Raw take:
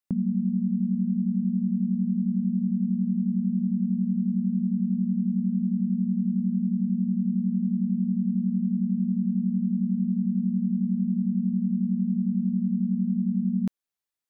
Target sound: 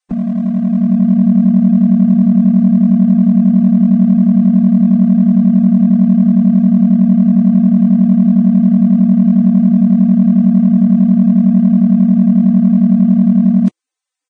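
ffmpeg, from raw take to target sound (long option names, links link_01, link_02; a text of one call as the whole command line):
ffmpeg -i in.wav -filter_complex "[0:a]equalizer=frequency=330:width=3.3:gain=5.5,aecho=1:1:3.9:0.78,acrossover=split=140|170[link_01][link_02][link_03];[link_02]dynaudnorm=framelen=320:gausssize=5:maxgain=14.5dB[link_04];[link_03]asoftclip=type=hard:threshold=-26.5dB[link_05];[link_01][link_04][link_05]amix=inputs=3:normalize=0,volume=7dB" -ar 22050 -c:a libvorbis -b:a 16k out.ogg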